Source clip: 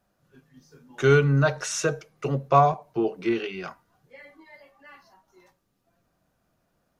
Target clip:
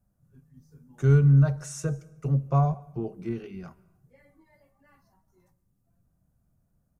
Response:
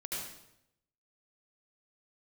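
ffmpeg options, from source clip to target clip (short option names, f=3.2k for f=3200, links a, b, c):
-filter_complex "[0:a]firequalizer=gain_entry='entry(100,0);entry(340,-17);entry(3100,-28);entry(8300,-11)':delay=0.05:min_phase=1,asplit=2[a][b];[1:a]atrim=start_sample=2205,adelay=62[c];[b][c]afir=irnorm=-1:irlink=0,volume=-24dB[d];[a][d]amix=inputs=2:normalize=0,volume=7.5dB"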